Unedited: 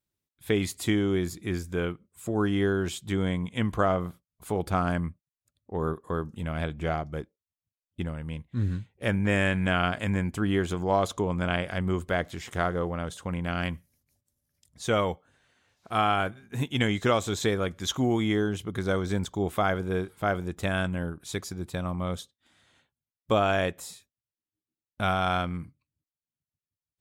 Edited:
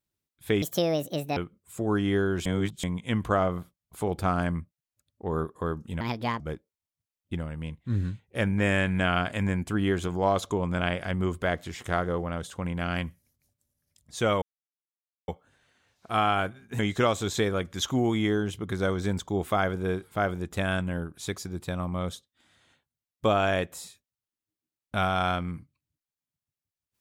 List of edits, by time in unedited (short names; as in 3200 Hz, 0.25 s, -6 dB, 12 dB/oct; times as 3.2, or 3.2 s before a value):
0.62–1.85 speed 165%
2.94–3.32 reverse
6.49–7.07 speed 147%
15.09 insert silence 0.86 s
16.6–16.85 cut